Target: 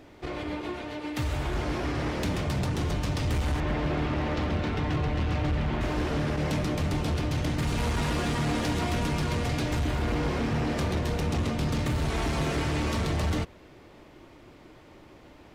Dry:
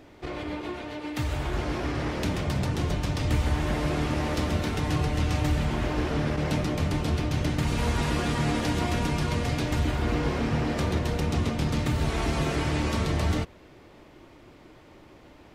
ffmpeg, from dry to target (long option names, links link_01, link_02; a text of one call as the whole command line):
ffmpeg -i in.wav -filter_complex "[0:a]asettb=1/sr,asplit=3[link_01][link_02][link_03];[link_01]atrim=end=3.604[link_04];[link_02]atrim=start=3.6:end=5.81,asetpts=PTS-STARTPTS,afade=type=in:duration=0.004:curve=qsin,afade=type=out:start_time=2.206:duration=0.004:curve=qsin,lowpass=3500[link_05];[link_03]atrim=start=5.806[link_06];[link_04][link_05]acrossfade=duration=0.004:curve1=hsin:curve2=qsin[link_07];[link_07][link_06]acrossfade=duration=0.004:curve1=qsin:curve2=hsin,volume=23dB,asoftclip=hard,volume=-23dB" out.wav